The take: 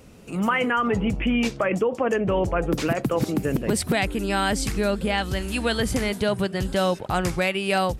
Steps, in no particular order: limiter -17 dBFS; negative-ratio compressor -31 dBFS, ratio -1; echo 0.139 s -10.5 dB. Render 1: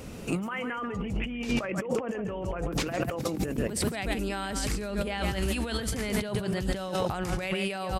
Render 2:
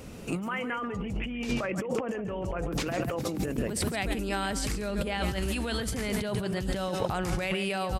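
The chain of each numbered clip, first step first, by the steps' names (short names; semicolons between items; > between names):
echo > negative-ratio compressor > limiter; limiter > echo > negative-ratio compressor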